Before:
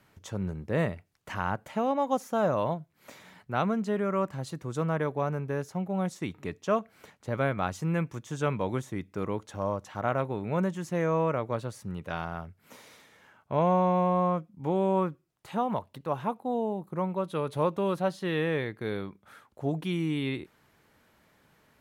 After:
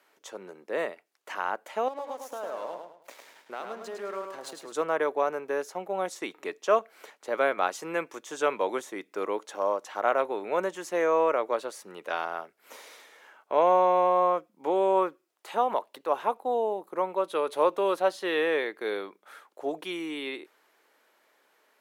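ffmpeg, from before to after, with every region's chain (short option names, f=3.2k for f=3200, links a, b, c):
-filter_complex "[0:a]asettb=1/sr,asplit=3[a][b][c];[a]atrim=end=1.884[d];[b]atrim=start=1.88:end=4.72,asetpts=PTS-STARTPTS,afade=t=in:d=0.004:c=qsin,afade=t=out:st=2.836:d=0.004:c=qsin,acompressor=threshold=-34dB:ratio=8:attack=3.2:release=140:knee=1:detection=peak,aeval=exprs='sgn(val(0))*max(abs(val(0))-0.00188,0)':c=same,aecho=1:1:105|210|315|420:0.562|0.18|0.0576|0.0184,atrim=end_sample=125244[e];[c]atrim=start=4.716[f];[d][e]acrossfade=d=0.004:c1=hsin:c2=qsin[g];[g][f]acrossfade=d=0.004:c1=qsin:c2=hsin,highpass=f=360:w=0.5412,highpass=f=360:w=1.3066,dynaudnorm=f=130:g=31:m=4.5dB"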